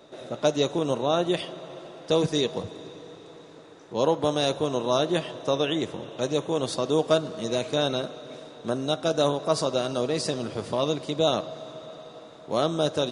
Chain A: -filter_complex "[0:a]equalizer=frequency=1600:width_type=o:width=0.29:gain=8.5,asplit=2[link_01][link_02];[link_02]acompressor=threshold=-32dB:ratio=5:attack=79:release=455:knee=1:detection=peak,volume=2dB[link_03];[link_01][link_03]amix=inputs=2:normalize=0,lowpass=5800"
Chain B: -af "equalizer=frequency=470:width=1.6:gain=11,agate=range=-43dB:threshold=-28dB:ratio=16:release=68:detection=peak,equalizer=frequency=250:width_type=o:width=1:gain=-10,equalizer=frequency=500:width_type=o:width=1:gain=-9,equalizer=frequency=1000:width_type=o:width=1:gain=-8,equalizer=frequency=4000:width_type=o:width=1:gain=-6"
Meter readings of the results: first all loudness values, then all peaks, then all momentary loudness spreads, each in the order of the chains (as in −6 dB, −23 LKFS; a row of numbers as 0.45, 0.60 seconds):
−22.5, −30.5 LKFS; −2.5, −13.0 dBFS; 14, 8 LU